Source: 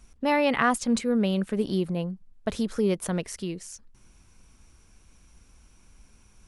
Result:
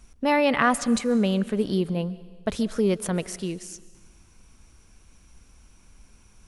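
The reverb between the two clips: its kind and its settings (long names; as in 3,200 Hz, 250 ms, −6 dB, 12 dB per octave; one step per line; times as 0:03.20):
comb and all-pass reverb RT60 1.4 s, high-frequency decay 1×, pre-delay 95 ms, DRR 17.5 dB
level +2 dB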